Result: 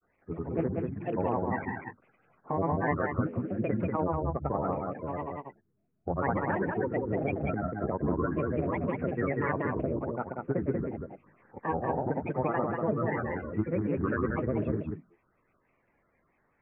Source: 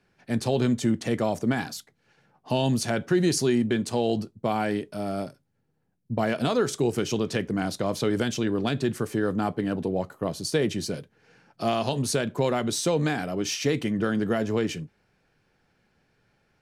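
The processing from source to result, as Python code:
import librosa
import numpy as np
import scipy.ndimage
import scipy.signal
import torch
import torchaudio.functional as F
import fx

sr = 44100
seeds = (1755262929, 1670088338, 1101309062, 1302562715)

y = fx.spec_quant(x, sr, step_db=30)
y = scipy.signal.sosfilt(scipy.signal.butter(12, 1900.0, 'lowpass', fs=sr, output='sos'), y)
y = fx.hum_notches(y, sr, base_hz=60, count=6)
y = fx.granulator(y, sr, seeds[0], grain_ms=100.0, per_s=20.0, spray_ms=100.0, spread_st=7)
y = y + 10.0 ** (-3.5 / 20.0) * np.pad(y, (int(189 * sr / 1000.0), 0))[:len(y)]
y = F.gain(torch.from_numpy(y), -3.0).numpy()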